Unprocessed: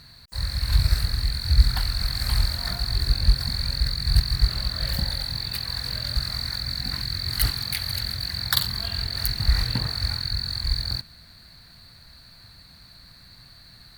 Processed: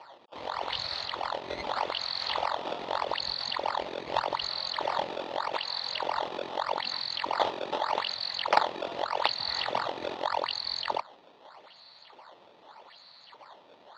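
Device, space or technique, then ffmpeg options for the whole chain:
circuit-bent sampling toy: -af "acrusher=samples=12:mix=1:aa=0.000001:lfo=1:lforange=19.2:lforate=0.82,highpass=550,equalizer=f=580:t=q:w=4:g=5,equalizer=f=880:t=q:w=4:g=7,equalizer=f=1600:t=q:w=4:g=-9,equalizer=f=2300:t=q:w=4:g=-4,equalizer=f=3500:t=q:w=4:g=5,lowpass=f=4300:w=0.5412,lowpass=f=4300:w=1.3066"

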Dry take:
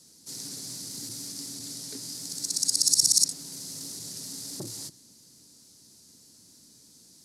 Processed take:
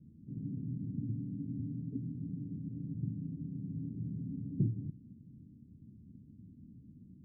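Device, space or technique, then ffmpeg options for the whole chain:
the neighbour's flat through the wall: -af "lowpass=f=230:w=0.5412,lowpass=f=230:w=1.3066,equalizer=f=84:t=o:w=0.77:g=3.5,volume=3.98"

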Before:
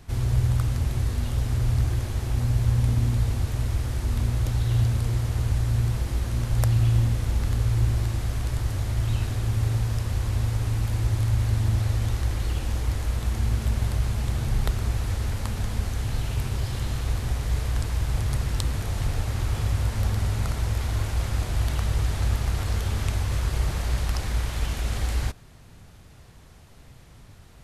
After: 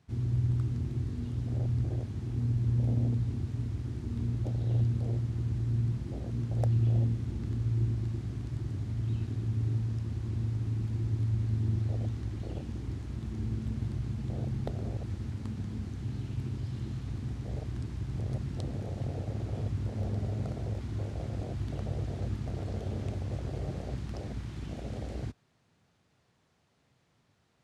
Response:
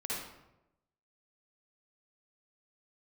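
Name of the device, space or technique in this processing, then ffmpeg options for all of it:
over-cleaned archive recording: -af "highpass=140,lowpass=7100,afwtdn=0.0282"

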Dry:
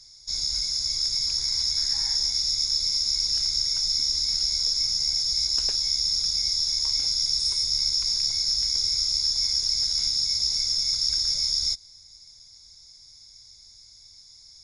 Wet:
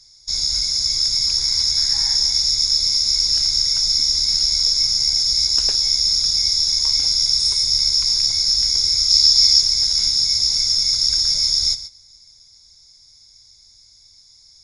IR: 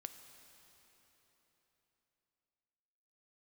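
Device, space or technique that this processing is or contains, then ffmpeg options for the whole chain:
keyed gated reverb: -filter_complex "[0:a]asplit=3[s0][s1][s2];[1:a]atrim=start_sample=2205[s3];[s1][s3]afir=irnorm=-1:irlink=0[s4];[s2]apad=whole_len=645226[s5];[s4][s5]sidechaingate=range=0.141:threshold=0.00891:ratio=16:detection=peak,volume=2.66[s6];[s0][s6]amix=inputs=2:normalize=0,asettb=1/sr,asplit=3[s7][s8][s9];[s7]atrim=end=9.104[s10];[s8]atrim=start=9.1:end=9.62,asetpts=PTS-STARTPTS,afade=t=in:d=0.004:c=qsin,afade=t=out:st=0.516:d=0.004:c=qsin,equalizer=f=4500:t=o:w=1.3:g=5.5[s11];[s9]atrim=start=9.616[s12];[s10][s11]acrossfade=d=0.004:c1=hsin:c2=qsin[s13];[s13][s12]acrossfade=d=0.004:c1=qsin:c2=hsin,volume=0.891"

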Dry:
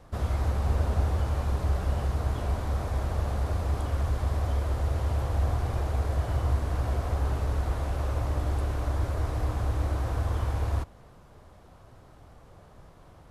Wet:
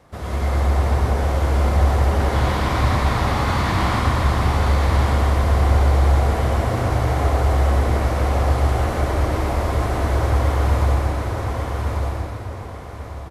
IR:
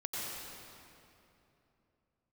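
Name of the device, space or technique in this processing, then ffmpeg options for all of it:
PA in a hall: -filter_complex "[0:a]asettb=1/sr,asplit=3[s0][s1][s2];[s0]atrim=end=2.204[s3];[s1]atrim=start=2.2:end=3.88,asetpts=PTS-STARTPTS,afade=t=in:d=0.004:c=qsin,afade=t=out:st=1.676:d=0.004:c=qsin,equalizer=f=125:t=o:w=1:g=6,equalizer=f=250:t=o:w=1:g=4,equalizer=f=500:t=o:w=1:g=-9,equalizer=f=1000:t=o:w=1:g=7,equalizer=f=2000:t=o:w=1:g=5,equalizer=f=4000:t=o:w=1:g=8[s4];[s2]atrim=start=3.876[s5];[s3][s4]acrossfade=d=0.004:c1=hsin:c2=qsin[s6];[s6][s5]acrossfade=d=0.004:c1=qsin:c2=hsin,highpass=f=120:p=1,equalizer=f=2100:t=o:w=0.28:g=4.5,aecho=1:1:118:0.473,aecho=1:1:1144|2288|3432|4576:0.708|0.219|0.068|0.0211[s7];[1:a]atrim=start_sample=2205[s8];[s7][s8]afir=irnorm=-1:irlink=0,volume=2.11"

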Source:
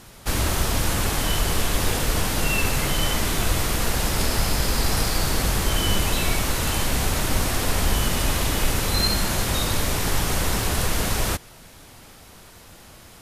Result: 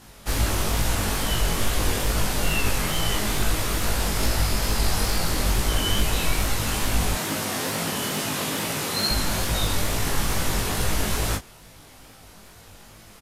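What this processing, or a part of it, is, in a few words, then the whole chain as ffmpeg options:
double-tracked vocal: -filter_complex "[0:a]asplit=2[s0][s1];[s1]adelay=19,volume=0.631[s2];[s0][s2]amix=inputs=2:normalize=0,flanger=delay=17.5:depth=6.5:speed=2.3,asettb=1/sr,asplit=3[s3][s4][s5];[s3]atrim=end=7.174[s6];[s4]atrim=start=7.17:end=9.11,asetpts=PTS-STARTPTS,afade=t=in:d=0.004:c=qsin,afade=t=out:st=1.936:d=0.004:c=qsin,highpass=f=130:w=0.5412,highpass=f=130:w=1.3066[s7];[s5]atrim=start=9.106[s8];[s6][s7]acrossfade=d=0.004:c1=hsin:c2=qsin[s9];[s9][s8]acrossfade=d=0.004:c1=qsin:c2=hsin"

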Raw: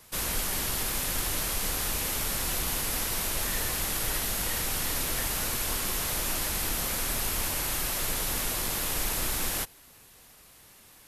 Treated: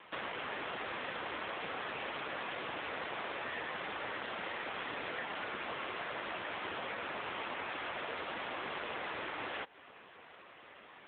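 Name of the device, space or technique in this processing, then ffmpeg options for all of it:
voicemail: -af "highpass=330,lowpass=2600,lowshelf=f=110:g=-3,acompressor=threshold=0.00631:ratio=6,volume=2.66" -ar 8000 -c:a libopencore_amrnb -b:a 7950

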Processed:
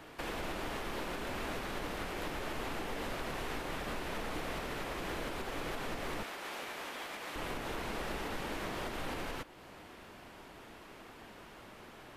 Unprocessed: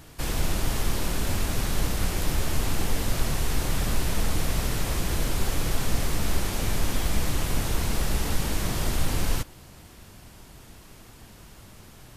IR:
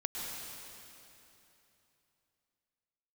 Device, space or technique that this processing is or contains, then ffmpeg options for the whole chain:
DJ mixer with the lows and highs turned down: -filter_complex "[0:a]acrossover=split=250 3300:gain=0.158 1 0.178[s0][s1][s2];[s0][s1][s2]amix=inputs=3:normalize=0,alimiter=level_in=2.24:limit=0.0631:level=0:latency=1:release=363,volume=0.447,asettb=1/sr,asplit=3[s3][s4][s5];[s3]atrim=end=6.234[s6];[s4]atrim=start=6.23:end=7.36,asetpts=PTS-STARTPTS,afade=t=in:d=0.004:c=qsin,afade=t=out:st=1.126:d=0.004:c=qsin,highpass=f=740:p=1[s7];[s5]atrim=start=7.356[s8];[s6][s7]acrossfade=d=0.004:c1=hsin:c2=qsin[s9];[s9][s8]acrossfade=d=0.004:c1=qsin:c2=hsin,volume=1.26"

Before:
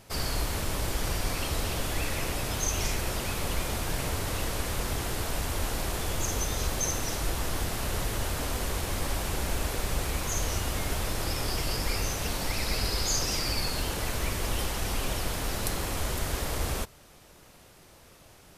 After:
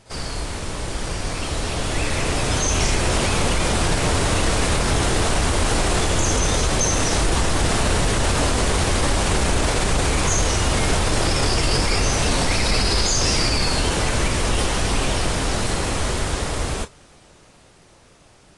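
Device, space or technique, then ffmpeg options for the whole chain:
low-bitrate web radio: -af "dynaudnorm=f=230:g=21:m=3.98,alimiter=limit=0.237:level=0:latency=1:release=23,volume=1.19" -ar 22050 -c:a aac -b:a 32k

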